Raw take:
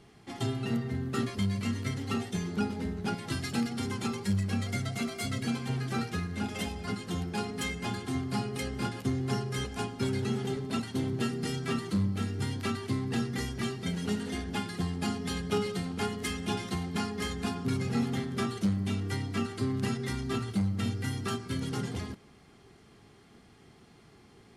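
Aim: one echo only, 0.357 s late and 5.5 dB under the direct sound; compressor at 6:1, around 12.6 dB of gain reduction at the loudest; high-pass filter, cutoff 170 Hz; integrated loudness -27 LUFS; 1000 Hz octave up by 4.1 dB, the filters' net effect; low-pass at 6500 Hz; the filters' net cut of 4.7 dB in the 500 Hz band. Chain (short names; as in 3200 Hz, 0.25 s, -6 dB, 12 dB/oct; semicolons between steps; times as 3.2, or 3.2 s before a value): HPF 170 Hz; LPF 6500 Hz; bell 500 Hz -8 dB; bell 1000 Hz +8 dB; compressor 6:1, threshold -41 dBFS; echo 0.357 s -5.5 dB; gain +16 dB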